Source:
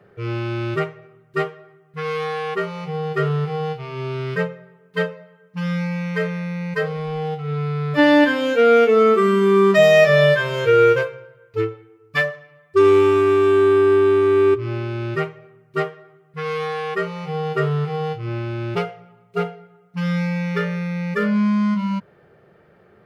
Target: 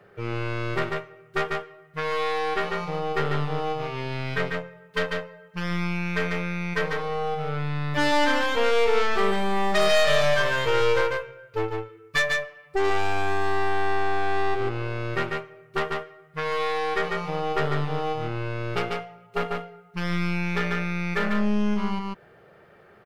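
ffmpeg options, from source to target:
ffmpeg -i in.wav -filter_complex "[0:a]aeval=exprs='(tanh(8.91*val(0)+0.75)-tanh(0.75))/8.91':channel_layout=same,lowshelf=frequency=74:gain=8.5,aecho=1:1:144:0.631,asplit=2[link_01][link_02];[link_02]acompressor=threshold=-28dB:ratio=6,volume=1dB[link_03];[link_01][link_03]amix=inputs=2:normalize=0,lowshelf=frequency=370:gain=-10" out.wav

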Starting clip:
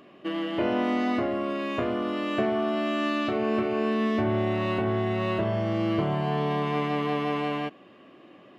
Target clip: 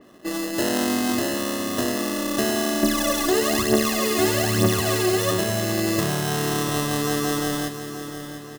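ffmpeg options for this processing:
ffmpeg -i in.wav -filter_complex "[0:a]equalizer=frequency=270:width_type=o:width=0.77:gain=2.5,acrusher=samples=19:mix=1:aa=0.000001,asettb=1/sr,asplit=3[link_01][link_02][link_03];[link_01]atrim=end=2.834[link_04];[link_02]atrim=start=2.83:end=5.31,asetpts=PTS-STARTPTS,afade=type=in:duration=0.004:curve=qsin,afade=type=out:start_time=2.476:duration=0.004:curve=qsin,aphaser=in_gain=1:out_gain=1:delay=2.9:decay=0.71:speed=1.1:type=triangular[link_05];[link_03]atrim=start=5.306[link_06];[link_04][link_05]acrossfade=duration=0.004:curve1=hsin:curve2=qsin[link_07];[link_07][link_06]acrossfade=duration=0.004:curve1=qsin:curve2=hsin,aecho=1:1:702|1404|2106|2808|3510|4212:0.282|0.152|0.0822|0.0444|0.024|0.0129,adynamicequalizer=threshold=0.00447:dfrequency=3700:dqfactor=0.7:tfrequency=3700:tqfactor=0.7:attack=5:release=100:ratio=0.375:range=3.5:mode=boostabove:tftype=highshelf,volume=1dB" out.wav

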